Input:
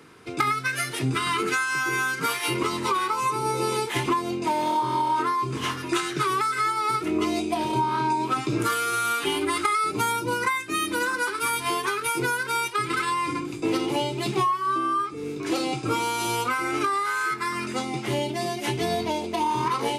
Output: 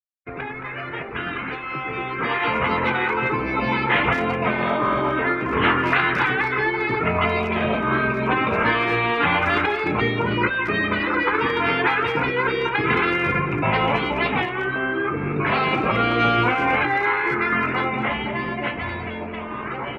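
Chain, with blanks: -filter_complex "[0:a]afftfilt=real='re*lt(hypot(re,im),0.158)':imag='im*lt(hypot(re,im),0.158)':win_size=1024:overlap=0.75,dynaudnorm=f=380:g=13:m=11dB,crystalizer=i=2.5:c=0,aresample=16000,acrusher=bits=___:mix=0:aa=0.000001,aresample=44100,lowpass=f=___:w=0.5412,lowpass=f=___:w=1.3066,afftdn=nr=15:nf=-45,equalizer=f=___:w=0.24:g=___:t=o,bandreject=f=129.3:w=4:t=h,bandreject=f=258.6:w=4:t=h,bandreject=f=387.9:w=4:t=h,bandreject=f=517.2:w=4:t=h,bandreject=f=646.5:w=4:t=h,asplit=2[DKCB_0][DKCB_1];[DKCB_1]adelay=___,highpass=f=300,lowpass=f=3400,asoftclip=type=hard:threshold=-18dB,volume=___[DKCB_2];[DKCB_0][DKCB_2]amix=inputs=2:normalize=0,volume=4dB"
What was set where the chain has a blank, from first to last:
5, 2100, 2100, 62, 11, 220, -10dB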